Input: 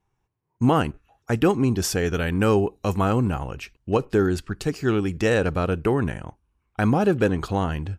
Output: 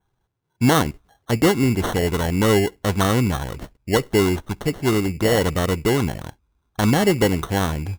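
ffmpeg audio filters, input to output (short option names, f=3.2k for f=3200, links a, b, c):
-af "acrusher=samples=18:mix=1:aa=0.000001,adynamicequalizer=threshold=0.00316:dfrequency=4700:dqfactor=4.1:tfrequency=4700:tqfactor=4.1:attack=5:release=100:ratio=0.375:range=2.5:mode=cutabove:tftype=bell,volume=2.5dB"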